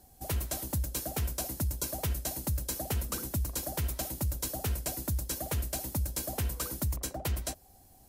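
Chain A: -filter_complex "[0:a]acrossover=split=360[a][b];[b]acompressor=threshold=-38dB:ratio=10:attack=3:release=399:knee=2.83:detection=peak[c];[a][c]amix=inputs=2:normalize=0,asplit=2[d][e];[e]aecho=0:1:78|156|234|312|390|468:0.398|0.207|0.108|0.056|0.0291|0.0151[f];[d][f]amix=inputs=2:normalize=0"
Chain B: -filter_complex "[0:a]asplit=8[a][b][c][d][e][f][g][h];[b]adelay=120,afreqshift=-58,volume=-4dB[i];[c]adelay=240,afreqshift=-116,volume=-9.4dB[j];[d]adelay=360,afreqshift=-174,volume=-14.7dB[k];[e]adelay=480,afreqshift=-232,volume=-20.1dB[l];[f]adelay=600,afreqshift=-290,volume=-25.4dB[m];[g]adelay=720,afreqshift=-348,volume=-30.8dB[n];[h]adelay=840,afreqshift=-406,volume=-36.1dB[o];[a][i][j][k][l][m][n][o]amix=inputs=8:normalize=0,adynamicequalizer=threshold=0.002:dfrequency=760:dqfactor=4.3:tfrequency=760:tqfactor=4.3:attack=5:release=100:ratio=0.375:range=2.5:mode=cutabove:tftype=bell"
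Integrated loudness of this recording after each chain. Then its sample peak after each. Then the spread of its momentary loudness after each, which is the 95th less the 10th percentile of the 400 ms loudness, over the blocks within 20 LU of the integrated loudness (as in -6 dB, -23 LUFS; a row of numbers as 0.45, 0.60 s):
-35.5, -32.5 LUFS; -21.5, -17.0 dBFS; 1, 2 LU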